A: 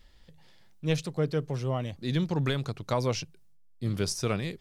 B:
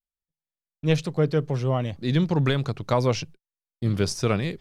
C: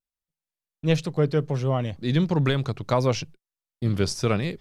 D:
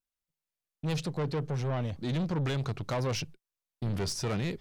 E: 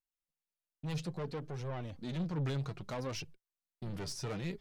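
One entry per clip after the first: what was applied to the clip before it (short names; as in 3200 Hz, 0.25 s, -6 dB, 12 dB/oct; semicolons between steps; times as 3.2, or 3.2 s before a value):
gate -46 dBFS, range -49 dB; high shelf 5700 Hz -8.5 dB; gain +6 dB
vibrato 1.4 Hz 36 cents
in parallel at -1.5 dB: limiter -20 dBFS, peak gain reduction 10 dB; on the sum: soft clip -21 dBFS, distortion -9 dB; gain -6 dB
flange 0.6 Hz, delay 1.7 ms, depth 6 ms, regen +41%; gain -3.5 dB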